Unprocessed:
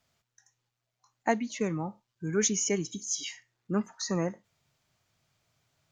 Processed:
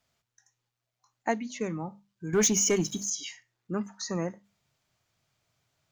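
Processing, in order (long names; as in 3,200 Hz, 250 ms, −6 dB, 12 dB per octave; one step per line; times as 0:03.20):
mains-hum notches 50/100/150/200/250 Hz
0:02.33–0:03.10: leveller curve on the samples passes 2
level −1.5 dB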